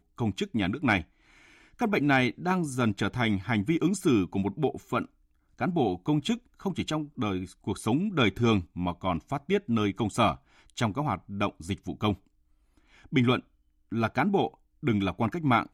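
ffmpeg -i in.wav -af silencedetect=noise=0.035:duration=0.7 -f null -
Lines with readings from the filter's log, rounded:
silence_start: 1.01
silence_end: 1.81 | silence_duration: 0.81
silence_start: 12.13
silence_end: 13.13 | silence_duration: 1.00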